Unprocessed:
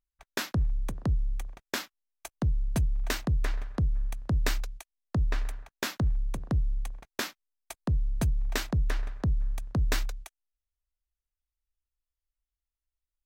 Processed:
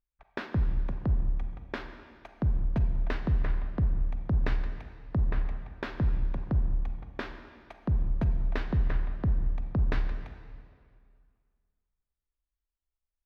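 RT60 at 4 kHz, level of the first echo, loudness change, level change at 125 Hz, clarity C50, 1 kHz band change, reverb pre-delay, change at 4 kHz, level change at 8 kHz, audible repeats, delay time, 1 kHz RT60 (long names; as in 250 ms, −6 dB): 1.8 s, no echo audible, 0.0 dB, +0.5 dB, 7.5 dB, −1.5 dB, 31 ms, −12.0 dB, below −25 dB, no echo audible, no echo audible, 2.1 s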